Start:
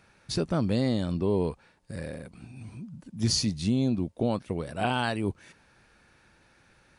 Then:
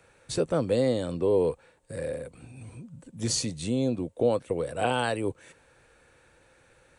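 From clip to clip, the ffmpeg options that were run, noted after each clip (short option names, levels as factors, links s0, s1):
-filter_complex "[0:a]equalizer=f=200:t=o:w=0.33:g=-9,equalizer=f=500:t=o:w=0.33:g=11,equalizer=f=5000:t=o:w=0.33:g=-7,equalizer=f=8000:t=o:w=0.33:g=9,acrossover=split=120|430|4700[s0][s1][s2][s3];[s0]acompressor=threshold=0.00562:ratio=6[s4];[s4][s1][s2][s3]amix=inputs=4:normalize=0"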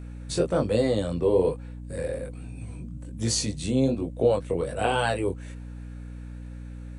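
-af "flanger=delay=18:depth=5:speed=1.2,aeval=exprs='val(0)+0.00794*(sin(2*PI*60*n/s)+sin(2*PI*2*60*n/s)/2+sin(2*PI*3*60*n/s)/3+sin(2*PI*4*60*n/s)/4+sin(2*PI*5*60*n/s)/5)':c=same,volume=1.78"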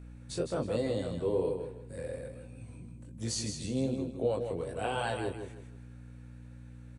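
-af "aecho=1:1:159|318|477|636:0.447|0.13|0.0376|0.0109,volume=0.355"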